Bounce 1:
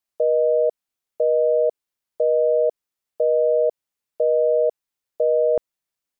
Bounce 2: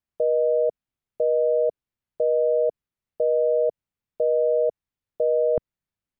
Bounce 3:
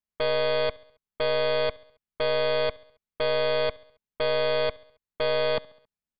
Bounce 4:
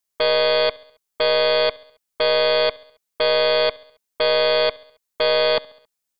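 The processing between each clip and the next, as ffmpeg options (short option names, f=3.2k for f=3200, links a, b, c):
-af "bass=f=250:g=14,treble=f=4k:g=-9,volume=-3.5dB"
-af "aecho=1:1:4.7:0.48,aeval=exprs='0.251*(cos(1*acos(clip(val(0)/0.251,-1,1)))-cos(1*PI/2))+0.0708*(cos(2*acos(clip(val(0)/0.251,-1,1)))-cos(2*PI/2))+0.0794*(cos(8*acos(clip(val(0)/0.251,-1,1)))-cos(8*PI/2))':c=same,aecho=1:1:68|136|204|272:0.0708|0.0389|0.0214|0.0118,volume=-7dB"
-af "bass=f=250:g=-11,treble=f=4k:g=9,volume=7dB"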